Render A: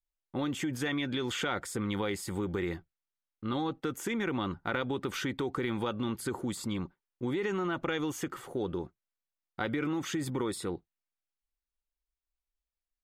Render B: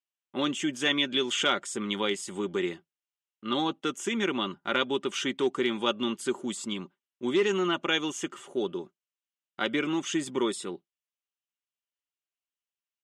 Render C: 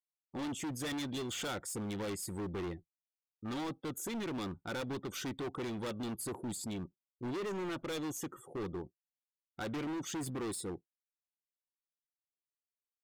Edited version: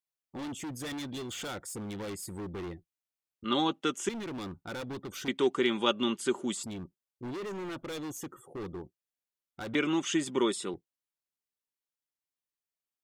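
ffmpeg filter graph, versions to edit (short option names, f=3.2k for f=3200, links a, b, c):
-filter_complex "[1:a]asplit=3[a][b][c];[2:a]asplit=4[d][e][f][g];[d]atrim=end=3.442[h];[a]atrim=start=3.438:end=4.092[i];[e]atrim=start=4.088:end=5.282[j];[b]atrim=start=5.278:end=6.632[k];[f]atrim=start=6.628:end=9.752[l];[c]atrim=start=9.748:end=10.742[m];[g]atrim=start=10.738[n];[h][i]acrossfade=d=0.004:c1=hsin:c2=hsin[o];[o][j]acrossfade=d=0.004:c1=hsin:c2=hsin[p];[p][k]acrossfade=d=0.004:c1=hsin:c2=hsin[q];[q][l]acrossfade=d=0.004:c1=hsin:c2=hsin[r];[r][m]acrossfade=d=0.004:c1=hsin:c2=hsin[s];[s][n]acrossfade=d=0.004:c1=hsin:c2=hsin"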